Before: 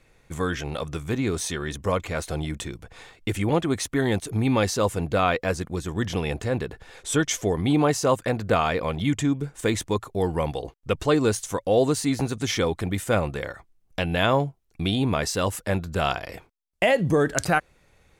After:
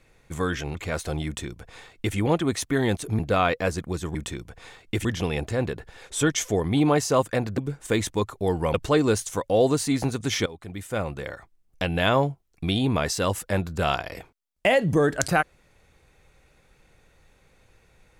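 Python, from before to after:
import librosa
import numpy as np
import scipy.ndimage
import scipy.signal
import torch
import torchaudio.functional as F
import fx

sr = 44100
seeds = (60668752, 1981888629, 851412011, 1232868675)

y = fx.edit(x, sr, fx.cut(start_s=0.75, length_s=1.23),
    fx.duplicate(start_s=2.49, length_s=0.9, to_s=5.98),
    fx.cut(start_s=4.42, length_s=0.6),
    fx.cut(start_s=8.51, length_s=0.81),
    fx.cut(start_s=10.48, length_s=0.43),
    fx.fade_in_from(start_s=12.63, length_s=1.66, curve='qsin', floor_db=-19.0), tone=tone)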